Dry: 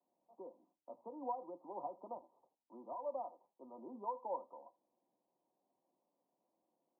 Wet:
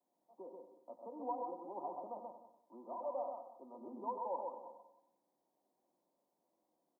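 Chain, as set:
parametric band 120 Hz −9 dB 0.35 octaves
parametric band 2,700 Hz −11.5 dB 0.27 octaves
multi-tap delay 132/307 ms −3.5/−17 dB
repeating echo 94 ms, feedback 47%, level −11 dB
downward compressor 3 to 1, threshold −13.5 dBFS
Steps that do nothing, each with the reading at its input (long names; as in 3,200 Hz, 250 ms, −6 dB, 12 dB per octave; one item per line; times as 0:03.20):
parametric band 2,700 Hz: nothing at its input above 1,200 Hz
downward compressor, threshold −13.5 dBFS: peak of its input −28.5 dBFS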